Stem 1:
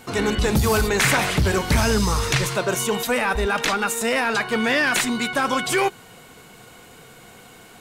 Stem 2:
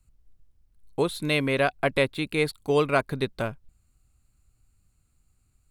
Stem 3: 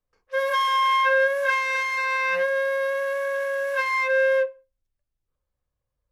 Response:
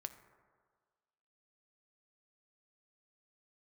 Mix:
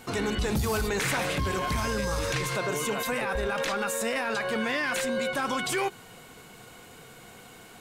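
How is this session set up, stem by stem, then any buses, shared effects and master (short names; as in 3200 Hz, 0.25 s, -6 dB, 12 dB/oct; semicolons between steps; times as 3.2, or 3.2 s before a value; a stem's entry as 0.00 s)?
-3.0 dB, 0.00 s, no send, dry
-7.5 dB, 0.00 s, no send, dry
-7.0 dB, 0.85 s, no send, tilt -2.5 dB/oct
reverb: off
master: limiter -21 dBFS, peak gain reduction 11 dB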